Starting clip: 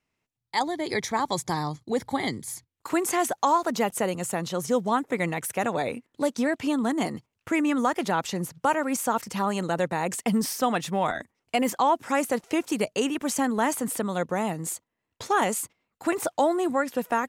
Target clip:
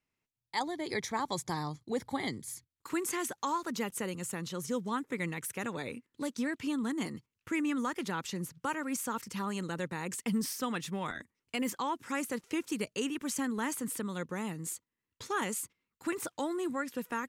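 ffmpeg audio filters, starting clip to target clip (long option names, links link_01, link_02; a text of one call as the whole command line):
ffmpeg -i in.wav -af "asetnsamples=nb_out_samples=441:pad=0,asendcmd='2.42 equalizer g -14',equalizer=frequency=690:width=2.2:gain=-3,volume=-6.5dB" out.wav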